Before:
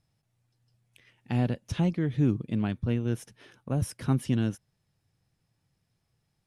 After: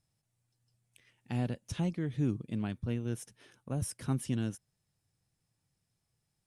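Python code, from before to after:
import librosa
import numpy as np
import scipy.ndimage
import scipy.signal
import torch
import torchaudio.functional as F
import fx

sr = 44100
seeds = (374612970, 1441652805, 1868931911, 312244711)

y = fx.peak_eq(x, sr, hz=8600.0, db=9.0, octaves=1.1)
y = y * 10.0 ** (-6.5 / 20.0)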